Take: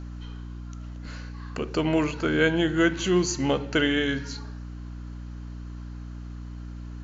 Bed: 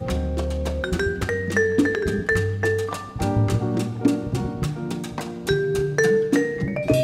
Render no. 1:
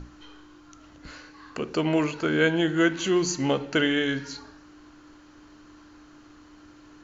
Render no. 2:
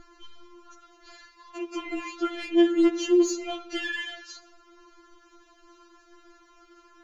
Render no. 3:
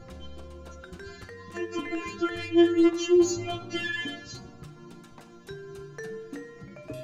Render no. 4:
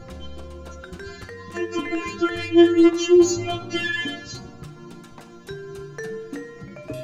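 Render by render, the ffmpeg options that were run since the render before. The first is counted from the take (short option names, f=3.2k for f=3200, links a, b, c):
-af "bandreject=f=60:t=h:w=6,bandreject=f=120:t=h:w=6,bandreject=f=180:t=h:w=6,bandreject=f=240:t=h:w=6"
-af "asoftclip=type=tanh:threshold=-16.5dB,afftfilt=real='re*4*eq(mod(b,16),0)':imag='im*4*eq(mod(b,16),0)':win_size=2048:overlap=0.75"
-filter_complex "[1:a]volume=-20dB[a];[0:a][a]amix=inputs=2:normalize=0"
-af "volume=6dB"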